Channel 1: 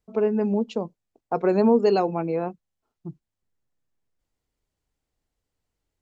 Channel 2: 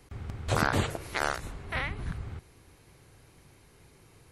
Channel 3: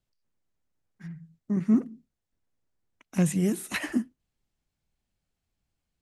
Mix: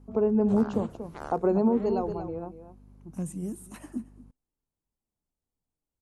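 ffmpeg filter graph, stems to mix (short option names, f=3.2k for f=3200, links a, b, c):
-filter_complex "[0:a]volume=-1dB,afade=t=out:st=1.49:d=0.65:silence=0.281838,asplit=2[a][b];[b]volume=-12dB[c];[1:a]aeval=exprs='val(0)+0.00708*(sin(2*PI*50*n/s)+sin(2*PI*2*50*n/s)/2+sin(2*PI*3*50*n/s)/3+sin(2*PI*4*50*n/s)/4+sin(2*PI*5*50*n/s)/5)':c=same,lowpass=f=3.7k:p=1,volume=-9.5dB[d];[2:a]equalizer=f=8.9k:t=o:w=0.32:g=7,volume=-12.5dB,asplit=2[e][f];[f]volume=-20.5dB[g];[c][g]amix=inputs=2:normalize=0,aecho=0:1:235:1[h];[a][d][e][h]amix=inputs=4:normalize=0,equalizer=f=250:t=o:w=1:g=5,equalizer=f=1k:t=o:w=1:g=4,equalizer=f=2k:t=o:w=1:g=-11,equalizer=f=4k:t=o:w=1:g=-7,alimiter=limit=-14.5dB:level=0:latency=1:release=372"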